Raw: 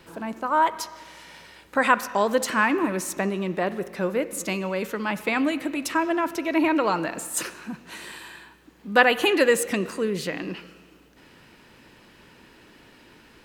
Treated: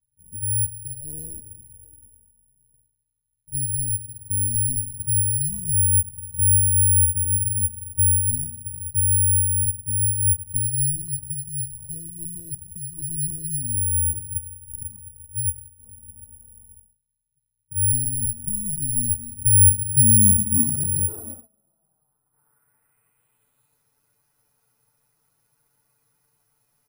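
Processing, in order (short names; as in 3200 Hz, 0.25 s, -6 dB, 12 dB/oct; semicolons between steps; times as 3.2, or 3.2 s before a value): gate -43 dBFS, range -30 dB; high shelf 9400 Hz +8.5 dB; comb 4.5 ms, depth 56%; dynamic EQ 3000 Hz, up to +5 dB, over -35 dBFS, Q 1.1; in parallel at -0.5 dB: compressor 5:1, threshold -37 dBFS, peak gain reduction 24.5 dB; on the sum: envelope flanger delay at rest 3.5 ms, full sweep at -18 dBFS; one-sided clip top -23.5 dBFS; low-pass sweep 150 Hz -> 12000 Hz, 9.71–12.01; speed mistake 15 ips tape played at 7.5 ips; careless resampling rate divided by 4×, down none, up zero stuff; gain +2 dB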